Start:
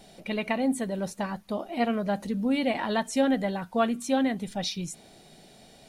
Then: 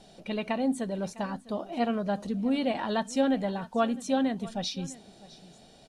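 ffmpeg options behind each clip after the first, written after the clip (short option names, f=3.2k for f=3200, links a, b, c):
-af "lowpass=8.1k,equalizer=f=2.1k:w=4.1:g=-7.5,aecho=1:1:655:0.106,volume=-1.5dB"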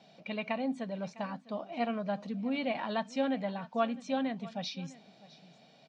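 -af "highpass=f=130:w=0.5412,highpass=f=130:w=1.3066,equalizer=f=150:t=q:w=4:g=3,equalizer=f=370:t=q:w=4:g=-8,equalizer=f=650:t=q:w=4:g=3,equalizer=f=1.1k:t=q:w=4:g=3,equalizer=f=2.3k:t=q:w=4:g=8,lowpass=f=5.6k:w=0.5412,lowpass=f=5.6k:w=1.3066,volume=-5.5dB"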